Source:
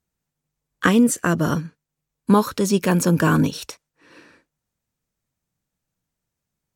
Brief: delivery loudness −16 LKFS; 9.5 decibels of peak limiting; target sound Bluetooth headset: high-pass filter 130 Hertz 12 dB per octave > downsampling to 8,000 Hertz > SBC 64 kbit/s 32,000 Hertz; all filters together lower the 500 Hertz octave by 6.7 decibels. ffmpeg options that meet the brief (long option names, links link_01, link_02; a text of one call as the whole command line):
ffmpeg -i in.wav -af "equalizer=frequency=500:width_type=o:gain=-9,alimiter=limit=-13.5dB:level=0:latency=1,highpass=130,aresample=8000,aresample=44100,volume=8.5dB" -ar 32000 -c:a sbc -b:a 64k out.sbc